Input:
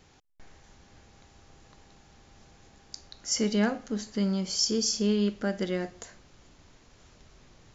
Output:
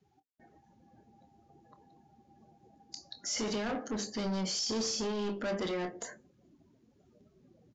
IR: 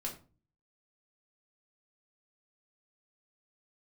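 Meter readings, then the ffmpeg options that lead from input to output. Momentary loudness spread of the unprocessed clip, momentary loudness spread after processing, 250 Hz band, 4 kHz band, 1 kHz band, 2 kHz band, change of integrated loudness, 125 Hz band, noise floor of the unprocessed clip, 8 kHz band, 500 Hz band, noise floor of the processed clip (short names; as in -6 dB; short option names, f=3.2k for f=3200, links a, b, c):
21 LU, 14 LU, -8.0 dB, -5.0 dB, 0.0 dB, -4.0 dB, -6.5 dB, -8.0 dB, -60 dBFS, n/a, -4.5 dB, -70 dBFS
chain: -filter_complex "[0:a]bandreject=f=50:t=h:w=6,bandreject=f=100:t=h:w=6,bandreject=f=150:t=h:w=6,bandreject=f=200:t=h:w=6,bandreject=f=250:t=h:w=6,bandreject=f=300:t=h:w=6,bandreject=f=350:t=h:w=6,bandreject=f=400:t=h:w=6,bandreject=f=450:t=h:w=6,bandreject=f=500:t=h:w=6,afftdn=nr=29:nf=-51,highpass=240,acrossover=split=2700[a][b];[b]acompressor=threshold=-34dB:ratio=4:attack=1:release=60[c];[a][c]amix=inputs=2:normalize=0,alimiter=level_in=1.5dB:limit=-24dB:level=0:latency=1:release=12,volume=-1.5dB,asoftclip=type=tanh:threshold=-38dB,asplit=2[d][e];[e]adelay=27,volume=-12dB[f];[d][f]amix=inputs=2:normalize=0,aresample=16000,aresample=44100,volume=7dB"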